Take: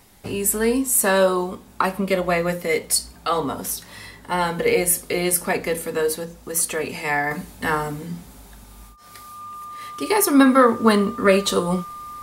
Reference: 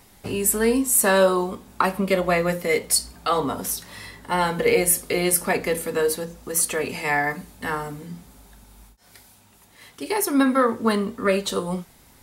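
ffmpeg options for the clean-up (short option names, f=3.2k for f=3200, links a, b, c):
-af "bandreject=f=1.2k:w=30,asetnsamples=n=441:p=0,asendcmd='7.31 volume volume -5dB',volume=0dB"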